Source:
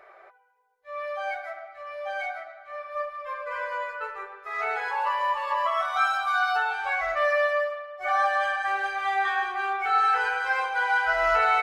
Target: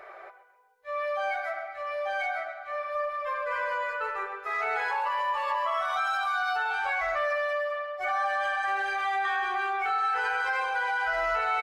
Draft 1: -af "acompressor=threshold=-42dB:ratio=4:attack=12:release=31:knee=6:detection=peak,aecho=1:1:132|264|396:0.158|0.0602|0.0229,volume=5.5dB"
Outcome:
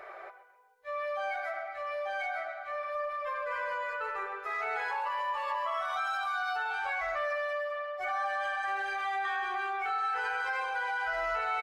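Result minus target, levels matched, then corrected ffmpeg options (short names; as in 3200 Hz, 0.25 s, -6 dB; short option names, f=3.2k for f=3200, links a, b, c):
compressor: peak gain reduction +4.5 dB
-af "acompressor=threshold=-36dB:ratio=4:attack=12:release=31:knee=6:detection=peak,aecho=1:1:132|264|396:0.158|0.0602|0.0229,volume=5.5dB"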